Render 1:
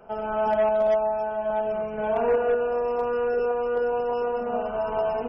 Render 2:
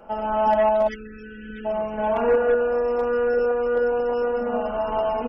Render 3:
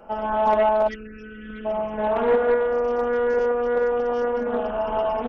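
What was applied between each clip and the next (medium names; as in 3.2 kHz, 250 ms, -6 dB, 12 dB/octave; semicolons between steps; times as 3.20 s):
spectral selection erased 0.88–1.65 s, 510–1300 Hz; comb 3.6 ms, depth 51%; trim +3 dB
loudspeaker Doppler distortion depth 0.28 ms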